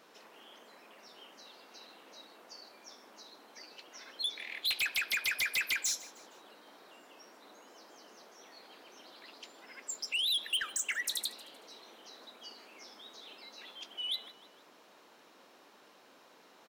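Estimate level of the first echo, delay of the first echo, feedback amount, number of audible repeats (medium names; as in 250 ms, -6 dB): -19.0 dB, 155 ms, 42%, 3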